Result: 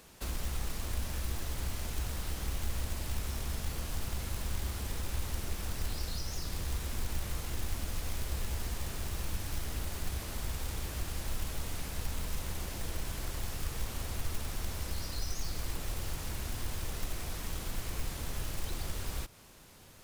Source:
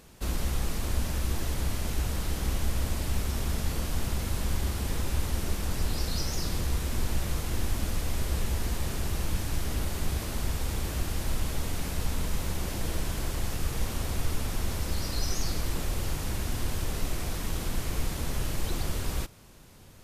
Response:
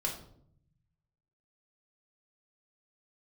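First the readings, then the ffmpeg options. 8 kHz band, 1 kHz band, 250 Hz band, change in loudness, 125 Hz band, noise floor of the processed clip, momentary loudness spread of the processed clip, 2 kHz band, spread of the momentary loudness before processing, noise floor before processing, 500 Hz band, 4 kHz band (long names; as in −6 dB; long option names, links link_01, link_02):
−4.5 dB, −6.0 dB, −9.0 dB, −6.0 dB, −7.0 dB, −42 dBFS, 2 LU, −5.0 dB, 2 LU, −36 dBFS, −7.5 dB, −5.0 dB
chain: -filter_complex "[0:a]acrusher=bits=4:mode=log:mix=0:aa=0.000001,lowshelf=frequency=370:gain=-6.5,acrossover=split=130[link_01][link_02];[link_02]acompressor=threshold=-41dB:ratio=4[link_03];[link_01][link_03]amix=inputs=2:normalize=0"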